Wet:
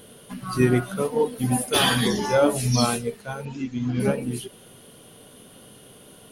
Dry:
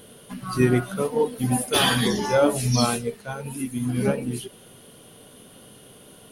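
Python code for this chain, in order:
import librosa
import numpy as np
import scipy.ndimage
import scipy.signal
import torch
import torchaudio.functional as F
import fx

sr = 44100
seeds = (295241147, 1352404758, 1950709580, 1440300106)

y = fx.steep_lowpass(x, sr, hz=6900.0, slope=72, at=(3.45, 4.0))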